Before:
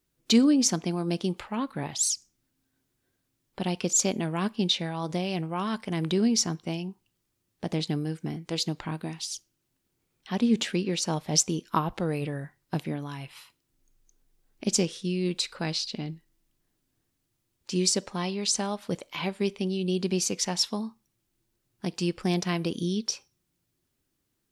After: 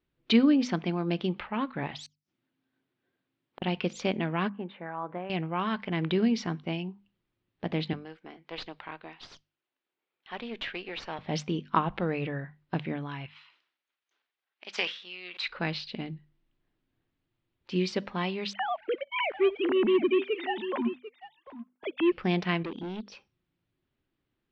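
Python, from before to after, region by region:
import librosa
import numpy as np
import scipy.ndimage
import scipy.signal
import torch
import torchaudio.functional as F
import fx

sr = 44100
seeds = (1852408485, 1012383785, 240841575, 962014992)

y = fx.chain(x, sr, fx.highpass(hz=160.0, slope=12),
    fx.gate_flip(shuts_db=-25.0, range_db=-35), at=(2.06, 3.62))
y = fx.chain(y, sr, fx.lowpass(hz=1400.0, slope=24),
    fx.tilt_eq(slope=4.5), at=(4.49, 5.3))
y = fx.chain(y, sr, fx.highpass(hz=520.0, slope=12),
    fx.tube_stage(drive_db=28.0, bias=0.6), at=(7.93, 11.19))
y = fx.chain(y, sr, fx.halfwave_gain(db=-3.0),
    fx.highpass(hz=1100.0, slope=12),
    fx.sustainer(db_per_s=78.0), at=(13.26, 15.48))
y = fx.chain(y, sr, fx.sine_speech(),
    fx.echo_single(ms=744, db=-13.5),
    fx.leveller(passes=1), at=(18.53, 22.12))
y = fx.chain(y, sr, fx.envelope_sharpen(power=1.5),
    fx.peak_eq(hz=68.0, db=-8.5, octaves=2.6),
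    fx.clip_hard(threshold_db=-32.0), at=(22.63, 23.12))
y = scipy.signal.sosfilt(scipy.signal.butter(4, 3500.0, 'lowpass', fs=sr, output='sos'), y)
y = fx.hum_notches(y, sr, base_hz=50, count=5)
y = fx.dynamic_eq(y, sr, hz=2000.0, q=0.82, threshold_db=-47.0, ratio=4.0, max_db=5)
y = F.gain(torch.from_numpy(y), -1.0).numpy()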